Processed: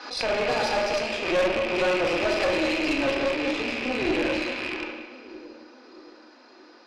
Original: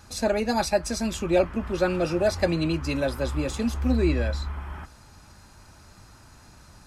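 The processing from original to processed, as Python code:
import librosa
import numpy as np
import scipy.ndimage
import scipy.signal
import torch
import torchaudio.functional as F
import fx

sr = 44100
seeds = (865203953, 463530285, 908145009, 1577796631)

p1 = fx.rattle_buzz(x, sr, strikes_db=-36.0, level_db=-19.0)
p2 = scipy.signal.sosfilt(scipy.signal.cheby1(4, 1.0, [300.0, 5100.0], 'bandpass', fs=sr, output='sos'), p1)
p3 = p2 + fx.echo_split(p2, sr, split_hz=560.0, low_ms=624, high_ms=179, feedback_pct=52, wet_db=-13.0, dry=0)
p4 = fx.room_shoebox(p3, sr, seeds[0], volume_m3=720.0, walls='mixed', distance_m=1.9)
p5 = fx.tube_stage(p4, sr, drive_db=21.0, bias=0.7)
p6 = fx.pre_swell(p5, sr, db_per_s=73.0)
y = F.gain(torch.from_numpy(p6), 2.0).numpy()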